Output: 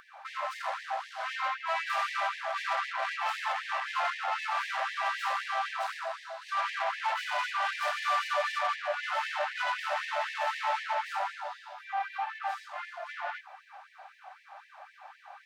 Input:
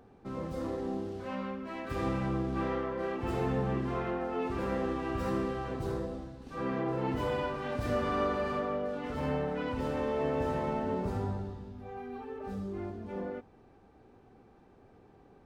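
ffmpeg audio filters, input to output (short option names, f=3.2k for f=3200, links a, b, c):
-filter_complex "[0:a]lowshelf=f=190:g=-10,asplit=2[a][b];[b]highpass=f=720:p=1,volume=28dB,asoftclip=type=tanh:threshold=-19dB[c];[a][c]amix=inputs=2:normalize=0,lowpass=f=2k:p=1,volume=-6dB,afftfilt=real='re*gte(b*sr/1024,550*pow(1700/550,0.5+0.5*sin(2*PI*3.9*pts/sr)))':imag='im*gte(b*sr/1024,550*pow(1700/550,0.5+0.5*sin(2*PI*3.9*pts/sr)))':win_size=1024:overlap=0.75"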